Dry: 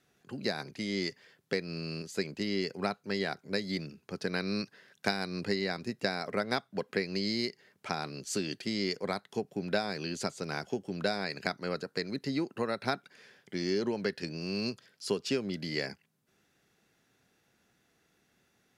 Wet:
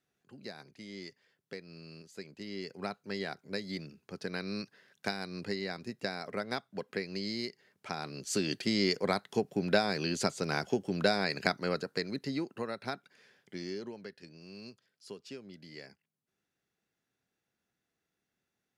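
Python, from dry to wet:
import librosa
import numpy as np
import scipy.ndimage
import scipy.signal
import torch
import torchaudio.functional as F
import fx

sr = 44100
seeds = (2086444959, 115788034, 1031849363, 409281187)

y = fx.gain(x, sr, db=fx.line((2.25, -12.0), (2.96, -4.5), (7.87, -4.5), (8.54, 3.5), (11.51, 3.5), (12.83, -6.0), (13.55, -6.0), (14.11, -14.5)))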